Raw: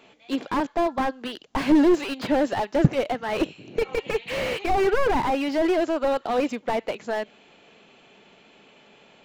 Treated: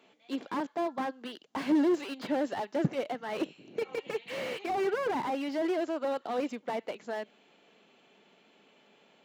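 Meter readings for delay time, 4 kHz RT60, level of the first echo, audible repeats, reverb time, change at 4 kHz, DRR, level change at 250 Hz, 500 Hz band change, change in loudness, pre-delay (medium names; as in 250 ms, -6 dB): no echo, no reverb, no echo, no echo, no reverb, -9.0 dB, no reverb, -8.0 dB, -8.5 dB, -8.5 dB, no reverb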